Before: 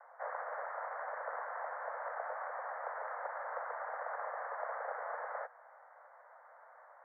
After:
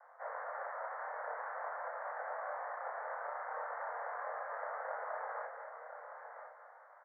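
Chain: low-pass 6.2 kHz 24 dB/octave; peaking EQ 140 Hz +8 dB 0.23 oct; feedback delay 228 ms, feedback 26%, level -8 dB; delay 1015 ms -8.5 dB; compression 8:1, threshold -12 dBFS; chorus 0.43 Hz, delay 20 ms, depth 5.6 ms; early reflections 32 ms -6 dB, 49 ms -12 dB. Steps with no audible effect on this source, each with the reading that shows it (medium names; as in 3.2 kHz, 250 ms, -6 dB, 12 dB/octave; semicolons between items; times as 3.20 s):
low-pass 6.2 kHz: input has nothing above 2.3 kHz; peaking EQ 140 Hz: input has nothing below 400 Hz; compression, threshold -12 dBFS: peak at its input -26.0 dBFS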